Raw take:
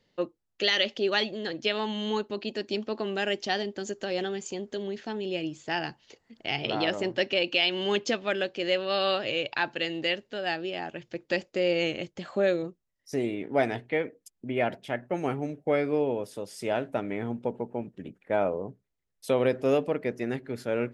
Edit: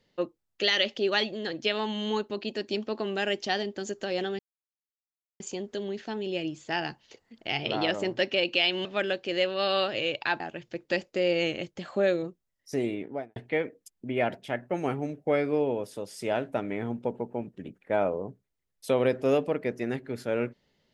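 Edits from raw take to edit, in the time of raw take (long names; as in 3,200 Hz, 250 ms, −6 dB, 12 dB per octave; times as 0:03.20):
0:04.39: splice in silence 1.01 s
0:07.84–0:08.16: remove
0:09.71–0:10.80: remove
0:13.31–0:13.76: fade out and dull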